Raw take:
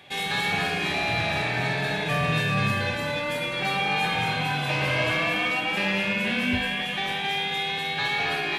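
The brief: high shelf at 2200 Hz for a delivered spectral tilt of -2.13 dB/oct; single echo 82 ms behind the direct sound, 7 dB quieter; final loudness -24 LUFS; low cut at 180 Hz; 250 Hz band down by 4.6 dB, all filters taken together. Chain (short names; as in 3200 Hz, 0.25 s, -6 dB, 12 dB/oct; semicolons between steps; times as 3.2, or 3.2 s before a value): HPF 180 Hz; bell 250 Hz -3.5 dB; high shelf 2200 Hz -8.5 dB; echo 82 ms -7 dB; gain +3.5 dB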